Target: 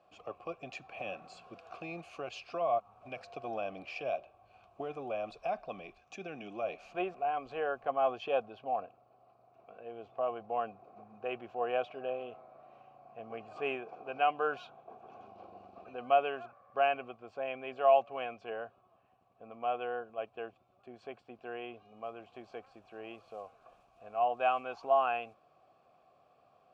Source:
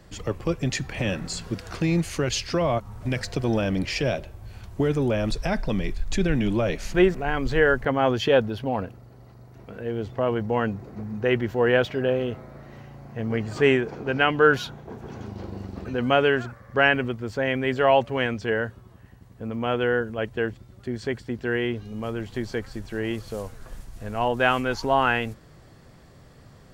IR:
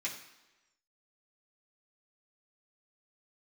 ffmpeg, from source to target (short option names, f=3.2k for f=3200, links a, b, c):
-filter_complex "[0:a]asplit=3[a][b][c];[a]bandpass=f=730:t=q:w=8,volume=0dB[d];[b]bandpass=f=1.09k:t=q:w=8,volume=-6dB[e];[c]bandpass=f=2.44k:t=q:w=8,volume=-9dB[f];[d][e][f]amix=inputs=3:normalize=0,asettb=1/sr,asplit=3[g][h][i];[g]atrim=end=5.984[j];[h]atrim=start=5.98:end=6.64,asetpts=PTS-STARTPTS,afade=t=in:d=0.004:c=qsin,afade=t=out:st=0.656:d=0.004:c=qsin,highpass=110,equalizer=f=610:t=q:w=4:g=-4,equalizer=f=1k:t=q:w=4:g=-5,equalizer=f=4.1k:t=q:w=4:g=-5,equalizer=f=5.9k:t=q:w=4:g=10,lowpass=f=8.9k:w=0.5412,lowpass=f=8.9k:w=1.3066[k];[i]atrim=start=6.636[l];[j][k]acrossfade=d=0.004:c1=hsin:c2=qsin[m];[m][l]acrossfade=d=0.004:c1=qsin:c2=hsin"